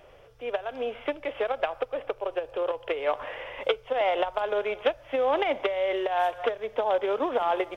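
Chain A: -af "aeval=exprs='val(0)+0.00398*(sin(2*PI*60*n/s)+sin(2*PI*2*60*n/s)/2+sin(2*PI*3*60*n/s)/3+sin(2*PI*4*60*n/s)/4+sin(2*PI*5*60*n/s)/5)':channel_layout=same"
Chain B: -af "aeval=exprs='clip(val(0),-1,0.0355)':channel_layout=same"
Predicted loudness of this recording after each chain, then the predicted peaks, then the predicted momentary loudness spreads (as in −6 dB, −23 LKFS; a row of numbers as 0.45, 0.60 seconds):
−28.5, −30.5 LKFS; −10.5, −10.5 dBFS; 7, 6 LU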